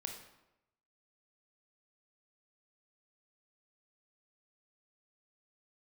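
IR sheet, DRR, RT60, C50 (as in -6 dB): 3.0 dB, 0.90 s, 6.0 dB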